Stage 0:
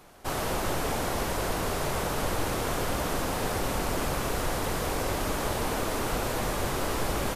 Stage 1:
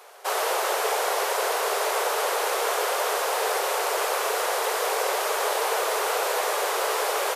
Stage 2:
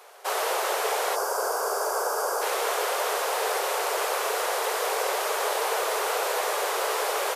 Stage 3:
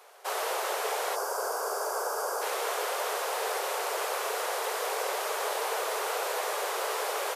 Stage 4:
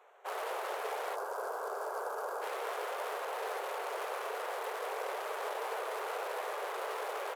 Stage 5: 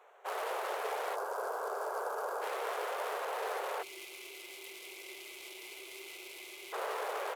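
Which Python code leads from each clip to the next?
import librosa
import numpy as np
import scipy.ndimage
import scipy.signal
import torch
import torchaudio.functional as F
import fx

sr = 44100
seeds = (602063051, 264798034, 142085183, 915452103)

y1 = scipy.signal.sosfilt(scipy.signal.ellip(4, 1.0, 40, 420.0, 'highpass', fs=sr, output='sos'), x)
y1 = F.gain(torch.from_numpy(y1), 7.0).numpy()
y2 = fx.spec_box(y1, sr, start_s=1.16, length_s=1.26, low_hz=1700.0, high_hz=4500.0, gain_db=-16)
y2 = F.gain(torch.from_numpy(y2), -1.5).numpy()
y3 = scipy.signal.sosfilt(scipy.signal.butter(2, 230.0, 'highpass', fs=sr, output='sos'), y2)
y3 = F.gain(torch.from_numpy(y3), -4.5).numpy()
y4 = fx.wiener(y3, sr, points=9)
y4 = F.gain(torch.from_numpy(y4), -5.5).numpy()
y5 = fx.spec_box(y4, sr, start_s=3.82, length_s=2.91, low_hz=390.0, high_hz=2000.0, gain_db=-24)
y5 = F.gain(torch.from_numpy(y5), 1.0).numpy()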